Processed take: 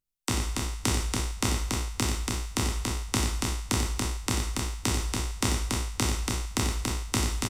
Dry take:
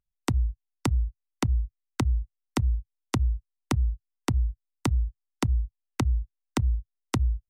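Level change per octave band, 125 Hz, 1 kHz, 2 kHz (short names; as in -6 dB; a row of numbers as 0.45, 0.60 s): -3.0, +3.5, +7.0 dB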